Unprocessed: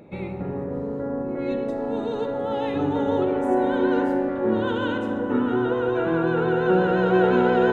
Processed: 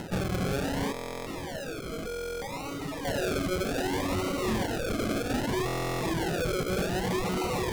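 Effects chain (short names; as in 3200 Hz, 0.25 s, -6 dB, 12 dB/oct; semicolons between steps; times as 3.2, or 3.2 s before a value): bell 2900 Hz +9.5 dB 2.8 oct; de-hum 49.44 Hz, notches 7; tube stage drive 33 dB, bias 0.65; low shelf 240 Hz +10 dB; decimation with a swept rate 37×, swing 60% 0.64 Hz; upward compressor, threshold -39 dBFS; reverb removal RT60 1.1 s; 0.92–3.05 resonator 160 Hz, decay 0.16 s, harmonics all, mix 70%; stuck buffer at 0.92/2.07/5.66, samples 1024, times 14; Doppler distortion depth 0.19 ms; gain +5 dB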